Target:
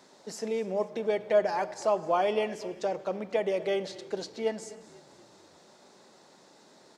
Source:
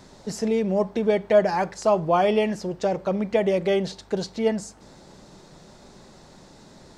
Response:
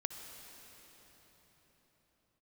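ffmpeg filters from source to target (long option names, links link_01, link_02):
-filter_complex "[0:a]highpass=310,asplit=5[link_01][link_02][link_03][link_04][link_05];[link_02]adelay=246,afreqshift=-32,volume=-20.5dB[link_06];[link_03]adelay=492,afreqshift=-64,volume=-25.7dB[link_07];[link_04]adelay=738,afreqshift=-96,volume=-30.9dB[link_08];[link_05]adelay=984,afreqshift=-128,volume=-36.1dB[link_09];[link_01][link_06][link_07][link_08][link_09]amix=inputs=5:normalize=0,asplit=2[link_10][link_11];[1:a]atrim=start_sample=2205,afade=type=out:start_time=0.39:duration=0.01,atrim=end_sample=17640[link_12];[link_11][link_12]afir=irnorm=-1:irlink=0,volume=-5.5dB[link_13];[link_10][link_13]amix=inputs=2:normalize=0,volume=-9dB"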